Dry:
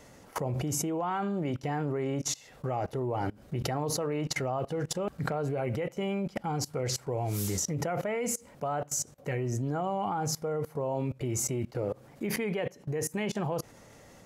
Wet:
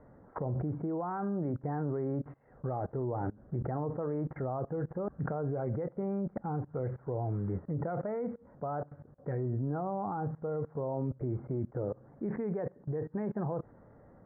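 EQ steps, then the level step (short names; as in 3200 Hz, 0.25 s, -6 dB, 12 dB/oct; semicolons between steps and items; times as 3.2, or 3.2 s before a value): steep low-pass 1700 Hz 48 dB/oct; tilt shelf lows +3.5 dB, about 750 Hz; -4.5 dB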